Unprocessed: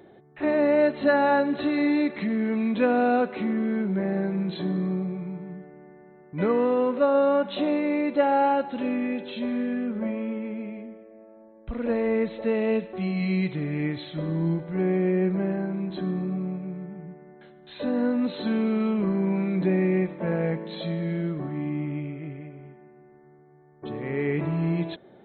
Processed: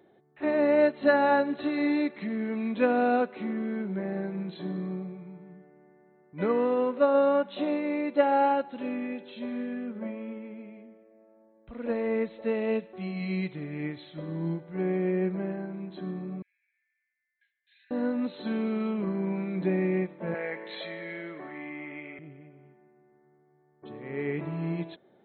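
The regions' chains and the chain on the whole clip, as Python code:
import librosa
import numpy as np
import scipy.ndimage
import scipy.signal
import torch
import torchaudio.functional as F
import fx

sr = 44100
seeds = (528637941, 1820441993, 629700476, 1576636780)

y = fx.chain(x, sr, fx.cheby_ripple_highpass(hz=1600.0, ripple_db=6),
    fx.air_absorb(metres=250.0), at=(16.42, 17.91))
y = fx.chain(y, sr, fx.highpass(hz=430.0, slope=12),
    fx.peak_eq(hz=2000.0, db=10.5, octaves=0.61),
    fx.env_flatten(amount_pct=50), at=(20.34, 22.19))
y = fx.low_shelf(y, sr, hz=84.0, db=-10.5)
y = fx.upward_expand(y, sr, threshold_db=-35.0, expansion=1.5)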